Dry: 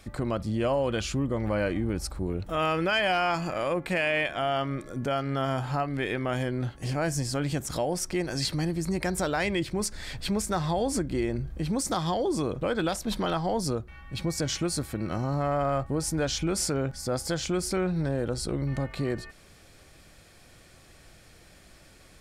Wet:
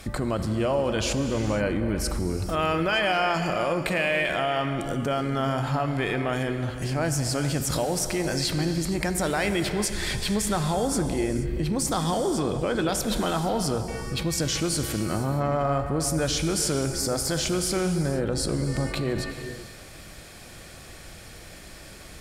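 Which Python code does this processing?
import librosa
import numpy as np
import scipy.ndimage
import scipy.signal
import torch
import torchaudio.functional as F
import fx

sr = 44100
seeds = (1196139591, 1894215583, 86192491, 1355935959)

p1 = fx.cheby_harmonics(x, sr, harmonics=(6,), levels_db=(-45,), full_scale_db=-14.5)
p2 = fx.high_shelf(p1, sr, hz=12000.0, db=4.5)
p3 = fx.over_compress(p2, sr, threshold_db=-37.0, ratio=-1.0)
p4 = p2 + (p3 * 10.0 ** (-2.0 / 20.0))
y = fx.rev_gated(p4, sr, seeds[0], gate_ms=500, shape='flat', drr_db=7.0)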